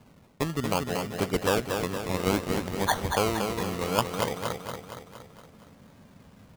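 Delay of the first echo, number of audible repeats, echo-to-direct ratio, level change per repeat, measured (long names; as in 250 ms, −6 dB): 233 ms, 6, −4.0 dB, −5.0 dB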